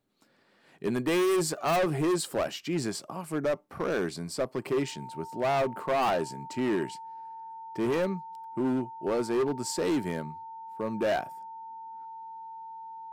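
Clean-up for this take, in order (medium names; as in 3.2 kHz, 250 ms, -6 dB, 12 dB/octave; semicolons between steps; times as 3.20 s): clip repair -23 dBFS; band-stop 900 Hz, Q 30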